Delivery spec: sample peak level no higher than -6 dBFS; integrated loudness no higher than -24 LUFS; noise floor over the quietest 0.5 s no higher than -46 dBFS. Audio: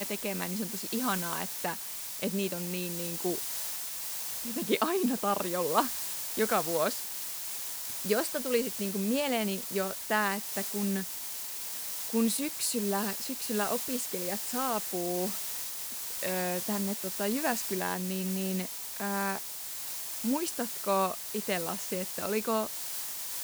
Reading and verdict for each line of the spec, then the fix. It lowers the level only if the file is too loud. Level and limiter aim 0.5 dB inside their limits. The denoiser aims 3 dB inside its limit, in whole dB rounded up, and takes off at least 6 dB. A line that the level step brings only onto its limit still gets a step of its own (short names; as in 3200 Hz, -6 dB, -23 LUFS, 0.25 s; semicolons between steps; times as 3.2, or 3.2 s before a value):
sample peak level -10.5 dBFS: OK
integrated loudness -31.0 LUFS: OK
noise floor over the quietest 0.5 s -39 dBFS: fail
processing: denoiser 10 dB, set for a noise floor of -39 dBFS